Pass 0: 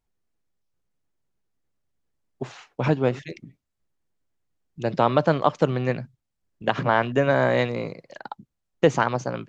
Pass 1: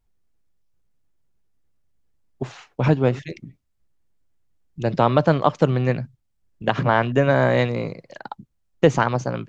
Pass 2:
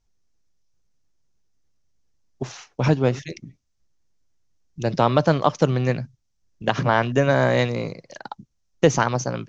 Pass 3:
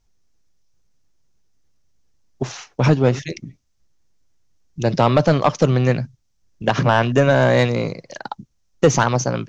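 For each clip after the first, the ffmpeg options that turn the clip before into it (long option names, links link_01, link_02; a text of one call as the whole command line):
ffmpeg -i in.wav -af "lowshelf=frequency=120:gain=9.5,volume=1.5dB" out.wav
ffmpeg -i in.wav -af "lowpass=frequency=6000:width_type=q:width=4.2,volume=-1dB" out.wav
ffmpeg -i in.wav -af "asoftclip=type=tanh:threshold=-10dB,volume=5.5dB" out.wav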